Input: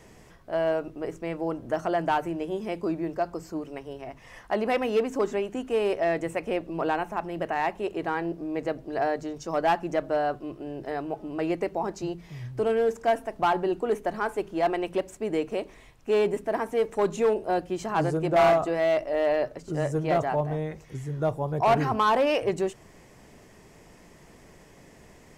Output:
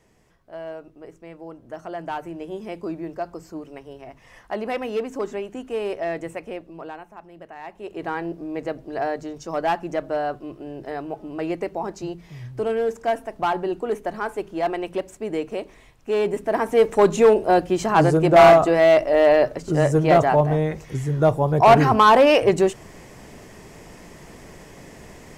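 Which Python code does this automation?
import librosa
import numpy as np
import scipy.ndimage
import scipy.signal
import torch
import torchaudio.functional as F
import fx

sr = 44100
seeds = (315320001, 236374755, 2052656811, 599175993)

y = fx.gain(x, sr, db=fx.line((1.59, -9.0), (2.54, -1.5), (6.28, -1.5), (7.07, -12.0), (7.6, -12.0), (8.06, 1.0), (16.16, 1.0), (16.82, 9.0)))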